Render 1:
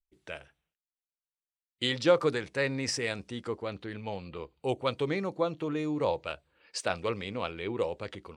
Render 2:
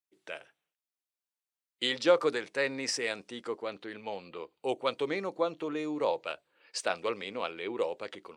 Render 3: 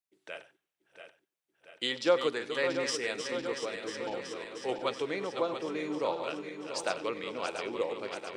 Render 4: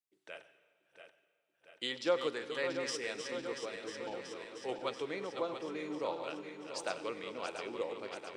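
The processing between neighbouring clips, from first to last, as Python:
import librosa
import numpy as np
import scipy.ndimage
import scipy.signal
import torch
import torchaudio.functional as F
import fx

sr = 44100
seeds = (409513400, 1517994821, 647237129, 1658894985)

y1 = scipy.signal.sosfilt(scipy.signal.butter(2, 300.0, 'highpass', fs=sr, output='sos'), x)
y2 = fx.reverse_delay_fb(y1, sr, ms=342, feedback_pct=79, wet_db=-7.5)
y2 = y2 + 10.0 ** (-19.0 / 20.0) * np.pad(y2, (int(95 * sr / 1000.0), 0))[:len(y2)]
y2 = y2 * 10.0 ** (-2.0 / 20.0)
y3 = fx.rev_plate(y2, sr, seeds[0], rt60_s=1.8, hf_ratio=1.0, predelay_ms=115, drr_db=17.0)
y3 = y3 * 10.0 ** (-5.5 / 20.0)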